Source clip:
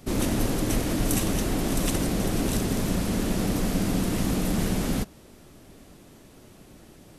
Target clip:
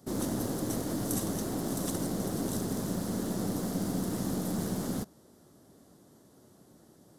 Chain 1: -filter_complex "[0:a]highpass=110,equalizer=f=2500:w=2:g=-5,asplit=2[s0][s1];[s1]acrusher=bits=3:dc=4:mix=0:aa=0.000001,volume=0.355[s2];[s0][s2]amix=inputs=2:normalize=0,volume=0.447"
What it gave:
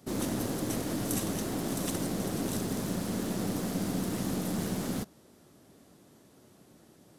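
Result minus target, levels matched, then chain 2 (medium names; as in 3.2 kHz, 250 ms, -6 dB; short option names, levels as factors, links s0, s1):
2 kHz band +4.0 dB
-filter_complex "[0:a]highpass=110,equalizer=f=2500:w=2:g=-16,asplit=2[s0][s1];[s1]acrusher=bits=3:dc=4:mix=0:aa=0.000001,volume=0.355[s2];[s0][s2]amix=inputs=2:normalize=0,volume=0.447"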